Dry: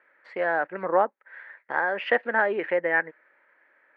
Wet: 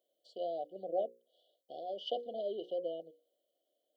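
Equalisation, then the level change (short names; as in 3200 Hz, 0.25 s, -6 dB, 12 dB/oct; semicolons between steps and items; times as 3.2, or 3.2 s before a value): brick-wall FIR band-stop 760–2900 Hz; tilt +3.5 dB/oct; notches 60/120/180/240/300/360/420/480/540 Hz; -7.0 dB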